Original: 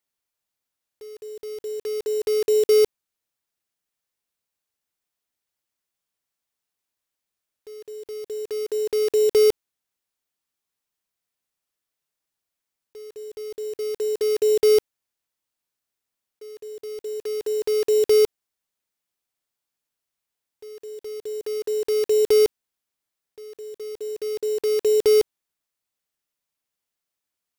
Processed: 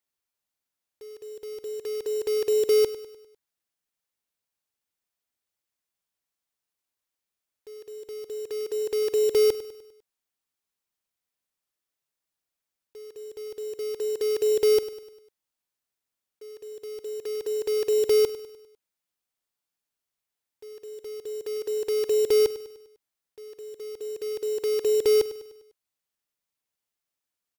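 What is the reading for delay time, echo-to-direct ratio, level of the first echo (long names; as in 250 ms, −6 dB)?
100 ms, −13.5 dB, −14.5 dB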